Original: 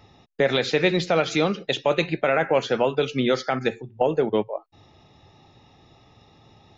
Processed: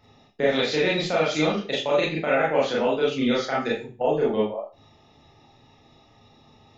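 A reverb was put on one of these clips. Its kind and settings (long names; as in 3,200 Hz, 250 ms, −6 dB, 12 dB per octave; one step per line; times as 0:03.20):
four-comb reverb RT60 0.32 s, combs from 26 ms, DRR −6 dB
level −7.5 dB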